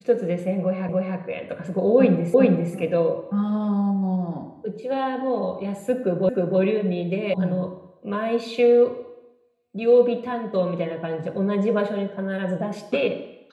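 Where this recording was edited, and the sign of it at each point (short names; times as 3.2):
0.89 repeat of the last 0.29 s
2.34 repeat of the last 0.4 s
6.29 repeat of the last 0.31 s
7.34 sound cut off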